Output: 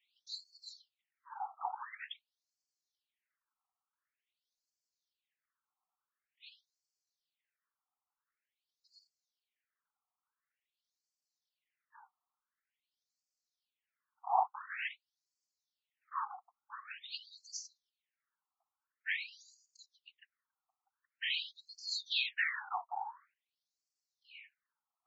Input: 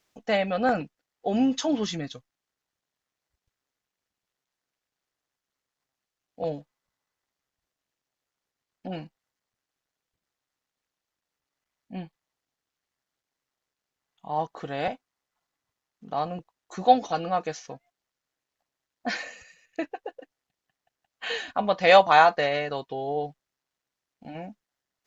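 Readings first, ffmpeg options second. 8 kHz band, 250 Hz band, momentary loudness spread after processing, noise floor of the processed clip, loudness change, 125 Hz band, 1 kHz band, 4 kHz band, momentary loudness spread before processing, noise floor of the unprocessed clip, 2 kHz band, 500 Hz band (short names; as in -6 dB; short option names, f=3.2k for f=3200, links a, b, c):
n/a, under -40 dB, 22 LU, under -85 dBFS, -13.5 dB, under -40 dB, -15.5 dB, -6.0 dB, 22 LU, under -85 dBFS, -10.5 dB, -30.0 dB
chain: -af "afftfilt=real='hypot(re,im)*cos(2*PI*random(0))':imag='hypot(re,im)*sin(2*PI*random(1))':win_size=512:overlap=0.75,afftfilt=real='re*between(b*sr/1024,960*pow(6100/960,0.5+0.5*sin(2*PI*0.47*pts/sr))/1.41,960*pow(6100/960,0.5+0.5*sin(2*PI*0.47*pts/sr))*1.41)':imag='im*between(b*sr/1024,960*pow(6100/960,0.5+0.5*sin(2*PI*0.47*pts/sr))/1.41,960*pow(6100/960,0.5+0.5*sin(2*PI*0.47*pts/sr))*1.41)':win_size=1024:overlap=0.75,volume=5.5dB"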